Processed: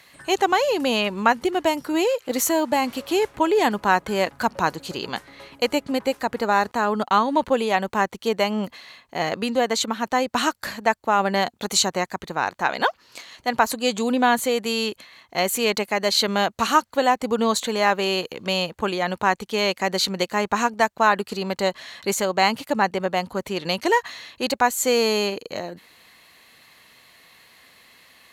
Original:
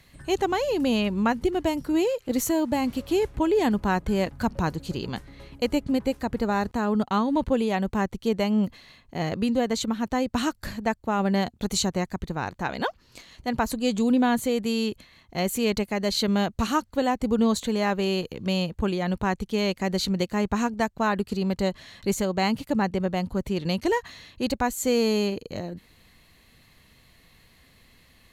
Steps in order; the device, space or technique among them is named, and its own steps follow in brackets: filter by subtraction (in parallel: LPF 970 Hz 12 dB/oct + phase invert); on the sum: gain +6.5 dB

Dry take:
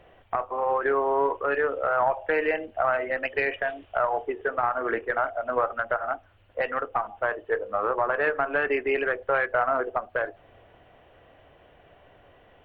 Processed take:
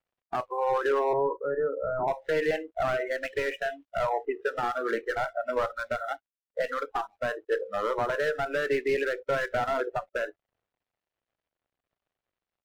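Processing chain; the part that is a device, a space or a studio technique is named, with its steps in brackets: early transistor amplifier (crossover distortion -51.5 dBFS; slew limiter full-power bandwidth 62 Hz); 1.13–2.08 Bessel low-pass 970 Hz, order 8; spectral noise reduction 20 dB

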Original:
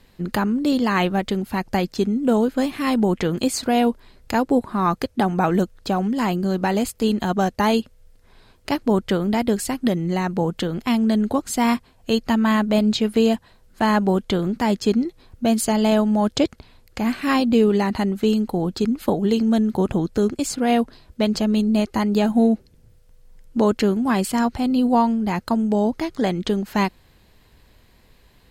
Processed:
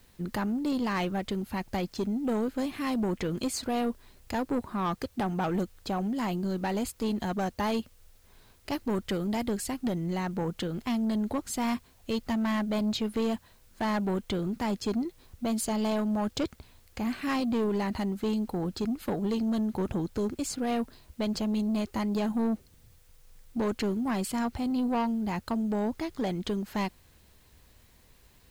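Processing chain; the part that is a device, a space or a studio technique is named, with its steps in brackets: 8.73–9.49 high shelf 4800 Hz +5.5 dB; open-reel tape (soft clip -16.5 dBFS, distortion -13 dB; bell 75 Hz +4.5 dB; white noise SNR 35 dB); gain -7 dB

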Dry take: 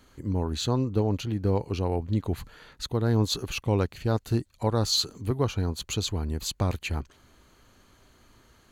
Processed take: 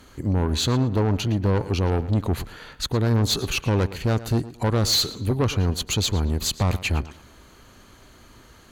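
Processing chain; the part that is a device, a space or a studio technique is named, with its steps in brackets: rockabilly slapback (tube stage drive 25 dB, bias 0.25; tape echo 0.113 s, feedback 32%, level -13.5 dB, low-pass 4800 Hz); gain +9 dB

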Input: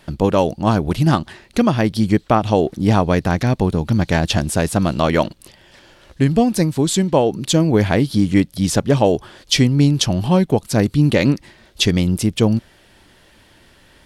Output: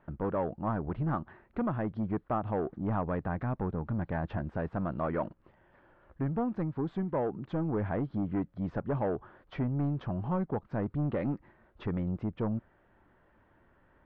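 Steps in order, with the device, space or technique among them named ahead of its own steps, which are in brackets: overdriven synthesiser ladder filter (soft clip -12 dBFS, distortion -12 dB; ladder low-pass 1700 Hz, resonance 30%); gain -6.5 dB

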